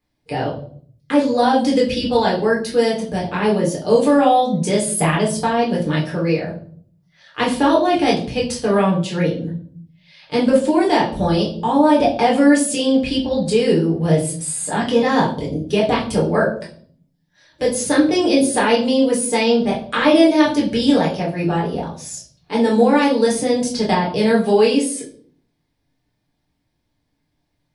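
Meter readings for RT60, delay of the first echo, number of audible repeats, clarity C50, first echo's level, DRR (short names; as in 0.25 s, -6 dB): 0.50 s, none, none, 8.5 dB, none, -5.0 dB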